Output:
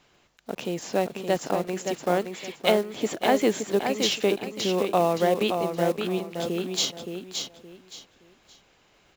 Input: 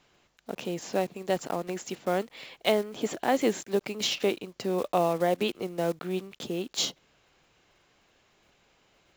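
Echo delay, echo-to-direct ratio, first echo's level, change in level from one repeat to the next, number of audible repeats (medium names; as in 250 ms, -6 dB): 570 ms, -5.5 dB, -6.0 dB, -11.5 dB, 3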